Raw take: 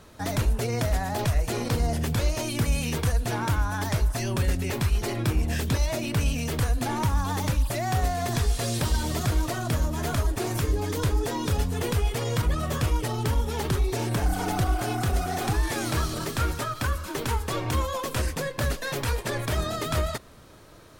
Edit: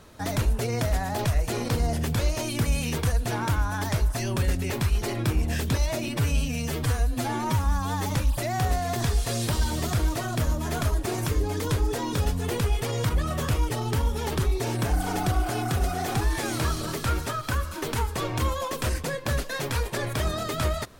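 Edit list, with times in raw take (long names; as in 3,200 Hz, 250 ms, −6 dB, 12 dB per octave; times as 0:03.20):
0:06.08–0:07.43: time-stretch 1.5×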